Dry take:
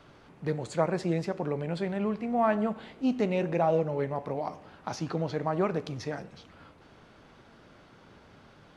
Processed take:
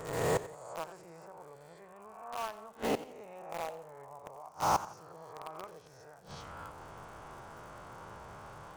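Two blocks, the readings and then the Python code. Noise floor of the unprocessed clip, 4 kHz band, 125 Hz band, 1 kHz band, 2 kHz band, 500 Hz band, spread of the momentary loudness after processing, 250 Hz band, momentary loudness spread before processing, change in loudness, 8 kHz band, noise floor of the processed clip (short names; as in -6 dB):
-56 dBFS, -1.5 dB, -12.0 dB, -3.0 dB, -5.0 dB, -9.5 dB, 20 LU, -15.0 dB, 11 LU, -9.0 dB, +4.0 dB, -55 dBFS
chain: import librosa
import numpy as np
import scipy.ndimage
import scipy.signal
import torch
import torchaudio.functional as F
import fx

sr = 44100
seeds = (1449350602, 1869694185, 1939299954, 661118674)

p1 = fx.spec_swells(x, sr, rise_s=1.38)
p2 = fx.dynamic_eq(p1, sr, hz=210.0, q=0.99, threshold_db=-38.0, ratio=4.0, max_db=-5)
p3 = fx.gate_flip(p2, sr, shuts_db=-24.0, range_db=-24)
p4 = fx.dmg_crackle(p3, sr, seeds[0], per_s=130.0, level_db=-53.0)
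p5 = fx.graphic_eq_10(p4, sr, hz=(250, 1000, 2000, 4000, 8000), db=(-10, 7, -4, -10, 7))
p6 = fx.quant_companded(p5, sr, bits=2)
p7 = p5 + (p6 * librosa.db_to_amplitude(-11.5))
p8 = fx.echo_warbled(p7, sr, ms=88, feedback_pct=32, rate_hz=2.8, cents=131, wet_db=-15.5)
y = p8 * librosa.db_to_amplitude(3.5)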